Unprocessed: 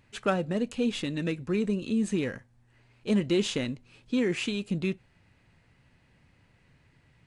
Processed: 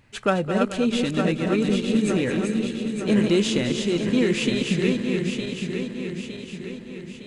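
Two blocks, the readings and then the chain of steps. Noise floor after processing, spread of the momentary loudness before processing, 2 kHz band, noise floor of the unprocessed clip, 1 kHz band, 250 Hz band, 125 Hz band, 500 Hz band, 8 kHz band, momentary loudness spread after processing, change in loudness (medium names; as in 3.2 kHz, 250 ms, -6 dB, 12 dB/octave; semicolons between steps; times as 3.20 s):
-40 dBFS, 9 LU, +8.0 dB, -65 dBFS, +8.0 dB, +7.5 dB, +7.5 dB, +7.5 dB, +8.0 dB, 13 LU, +6.5 dB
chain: backward echo that repeats 455 ms, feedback 70%, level -4 dB; two-band feedback delay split 350 Hz, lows 398 ms, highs 215 ms, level -11 dB; trim +5 dB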